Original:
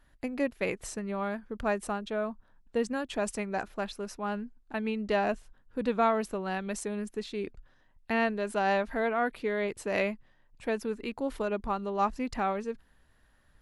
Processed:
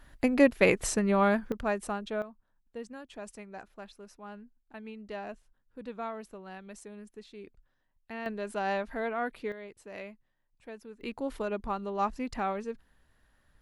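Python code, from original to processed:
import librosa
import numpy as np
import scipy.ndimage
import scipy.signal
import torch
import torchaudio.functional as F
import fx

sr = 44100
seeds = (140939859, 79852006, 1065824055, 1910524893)

y = fx.gain(x, sr, db=fx.steps((0.0, 8.5), (1.52, -1.0), (2.22, -12.0), (8.26, -4.0), (9.52, -14.0), (11.01, -2.0)))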